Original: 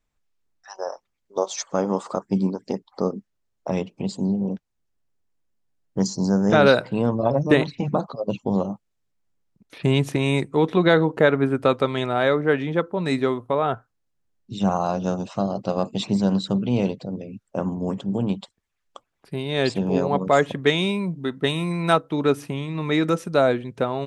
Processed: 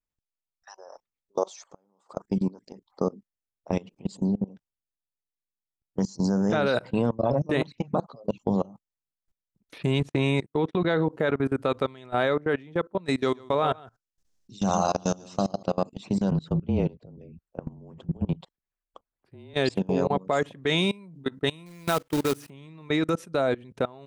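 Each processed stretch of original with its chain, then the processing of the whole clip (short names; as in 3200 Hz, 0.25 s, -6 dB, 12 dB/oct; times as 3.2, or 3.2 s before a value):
1.56–2.16 bell 790 Hz +3.5 dB 0.65 oct + flipped gate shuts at -13 dBFS, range -29 dB
10–11.08 gate -32 dBFS, range -34 dB + air absorption 57 m
13.21–15.63 bell 5800 Hz +12.5 dB 1.3 oct + echo 0.135 s -9.5 dB
16.31–19.54 LPF 1400 Hz 6 dB/oct + frequency shift -30 Hz
21.66–22.5 bell 77 Hz -2 dB 0.25 oct + companded quantiser 4-bit
whole clip: high shelf 8200 Hz +2.5 dB; level quantiser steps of 23 dB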